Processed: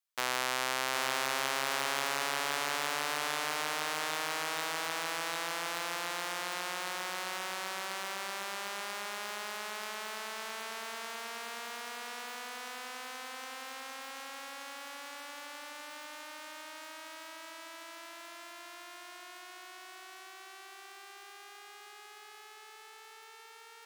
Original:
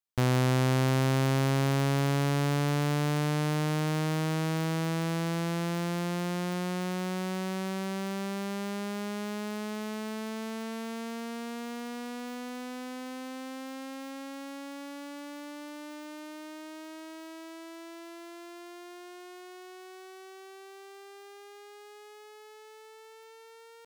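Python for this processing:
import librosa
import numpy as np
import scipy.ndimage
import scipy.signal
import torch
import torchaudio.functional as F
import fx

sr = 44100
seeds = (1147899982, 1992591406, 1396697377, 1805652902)

y = scipy.signal.sosfilt(scipy.signal.butter(2, 960.0, 'highpass', fs=sr, output='sos'), x)
y = fx.echo_feedback(y, sr, ms=763, feedback_pct=54, wet_db=-7.0)
y = F.gain(torch.from_numpy(y), 2.5).numpy()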